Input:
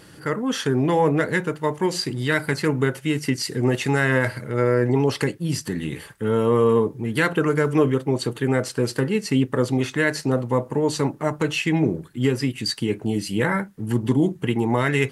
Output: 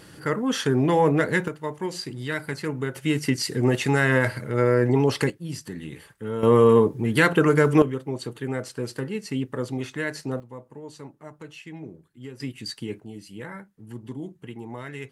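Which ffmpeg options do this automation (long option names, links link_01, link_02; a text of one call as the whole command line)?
ffmpeg -i in.wav -af "asetnsamples=nb_out_samples=441:pad=0,asendcmd='1.48 volume volume -7.5dB;2.96 volume volume -0.5dB;5.3 volume volume -8.5dB;6.43 volume volume 2dB;7.82 volume volume -8dB;10.4 volume volume -19dB;12.4 volume volume -9dB;13 volume volume -16dB',volume=-0.5dB" out.wav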